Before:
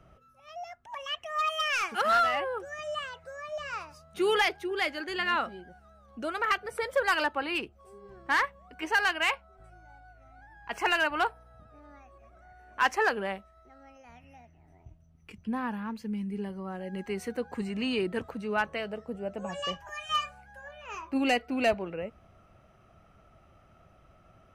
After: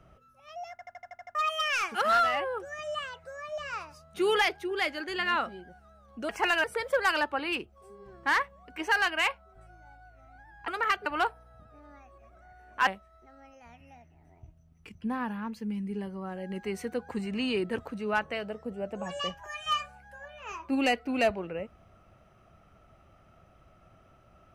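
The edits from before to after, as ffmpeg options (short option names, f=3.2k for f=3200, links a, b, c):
-filter_complex "[0:a]asplit=14[a][b][c][d][e][f][g][h][i][j][k][l][m][n];[a]atrim=end=0.792[o];[b]atrim=start=0.708:end=0.792[p];[c]atrim=start=0.708:end=0.792[q];[d]atrim=start=0.708:end=0.792[r];[e]atrim=start=0.708:end=0.792[s];[f]atrim=start=0.708:end=0.792[t];[g]atrim=start=0.708:end=0.792[u];[h]atrim=start=0.708:end=0.792[v];[i]atrim=start=1.348:end=6.292[w];[j]atrim=start=10.708:end=11.062[x];[k]atrim=start=6.668:end=10.712[y];[l]atrim=start=6.288:end=6.672[z];[m]atrim=start=11.058:end=12.872[aa];[n]atrim=start=13.298[ab];[o][p]acrossfade=d=0.004:c1=hsin:c2=hsin[ac];[ac][q]acrossfade=d=0.004:c1=hsin:c2=hsin[ad];[ad][r]acrossfade=d=0.004:c1=hsin:c2=hsin[ae];[ae][s]acrossfade=d=0.004:c1=hsin:c2=hsin[af];[af][t]acrossfade=d=0.004:c1=hsin:c2=hsin[ag];[ag][u]acrossfade=d=0.004:c1=hsin:c2=hsin[ah];[ah][v]acrossfade=d=0.004:c1=hsin:c2=hsin[ai];[ai][w]acrossfade=d=0.004:c1=hsin:c2=hsin[aj];[aj][x]acrossfade=d=0.004:c1=hsin:c2=hsin[ak];[ak][y]acrossfade=d=0.004:c1=hsin:c2=hsin[al];[al][z]acrossfade=d=0.004:c1=hsin:c2=hsin[am];[am][aa]acrossfade=d=0.004:c1=hsin:c2=hsin[an];[an][ab]acrossfade=d=0.004:c1=hsin:c2=hsin"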